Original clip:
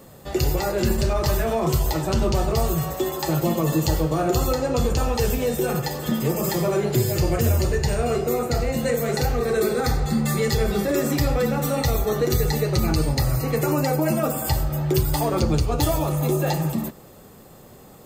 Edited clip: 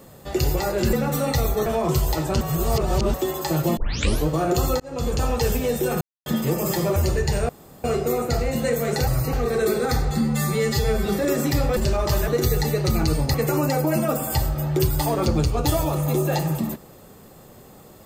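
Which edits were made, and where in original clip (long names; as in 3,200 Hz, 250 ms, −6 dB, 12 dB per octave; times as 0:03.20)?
0:00.93–0:01.44: swap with 0:11.43–0:12.16
0:02.19–0:02.92: reverse
0:03.55: tape start 0.50 s
0:04.58–0:05.11: fade in equal-power
0:05.79–0:06.04: silence
0:06.74–0:07.52: remove
0:08.05: splice in room tone 0.35 s
0:10.16–0:10.73: time-stretch 1.5×
0:13.23–0:13.49: move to 0:09.28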